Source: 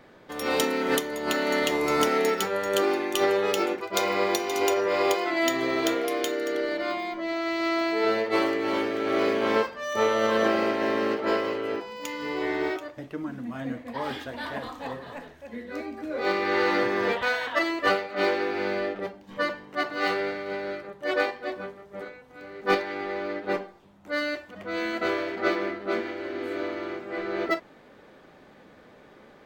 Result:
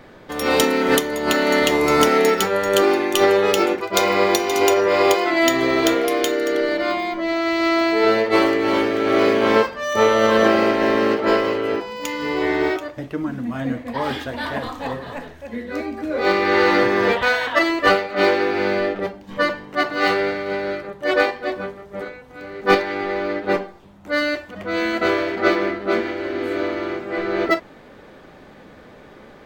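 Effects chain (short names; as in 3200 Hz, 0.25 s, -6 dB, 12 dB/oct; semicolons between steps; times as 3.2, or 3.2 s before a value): low shelf 89 Hz +8.5 dB; gain +7.5 dB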